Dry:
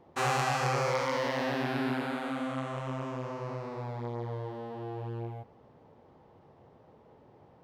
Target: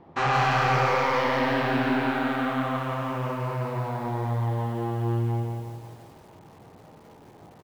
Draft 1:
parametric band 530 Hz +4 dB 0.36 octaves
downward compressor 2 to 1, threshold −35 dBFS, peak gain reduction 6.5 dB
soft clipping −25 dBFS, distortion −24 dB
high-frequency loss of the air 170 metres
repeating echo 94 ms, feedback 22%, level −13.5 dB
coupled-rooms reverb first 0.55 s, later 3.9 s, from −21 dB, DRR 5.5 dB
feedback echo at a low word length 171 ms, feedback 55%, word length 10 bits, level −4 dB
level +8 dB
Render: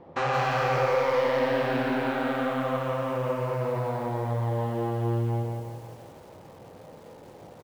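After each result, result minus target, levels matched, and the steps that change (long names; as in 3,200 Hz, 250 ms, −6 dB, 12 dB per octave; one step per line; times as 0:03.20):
downward compressor: peak gain reduction +6.5 dB; 500 Hz band +4.5 dB
remove: downward compressor 2 to 1, threshold −35 dBFS, peak gain reduction 6.5 dB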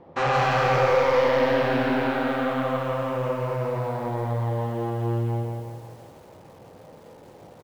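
500 Hz band +4.5 dB
change: parametric band 530 Hz −6.5 dB 0.36 octaves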